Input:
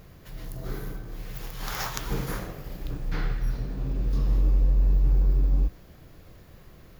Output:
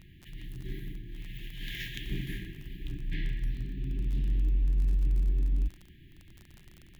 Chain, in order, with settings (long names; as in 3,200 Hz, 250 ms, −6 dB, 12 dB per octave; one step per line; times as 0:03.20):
linear-phase brick-wall band-stop 400–1,600 Hz
high shelf with overshoot 4,100 Hz −8.5 dB, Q 3
in parallel at −5 dB: gain into a clipping stage and back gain 21.5 dB
on the sum: surface crackle 28 per second −30 dBFS
level −8 dB